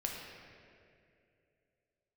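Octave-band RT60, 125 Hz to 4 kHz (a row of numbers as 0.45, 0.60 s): 2.9, 2.8, 3.0, 2.1, 2.3, 1.6 s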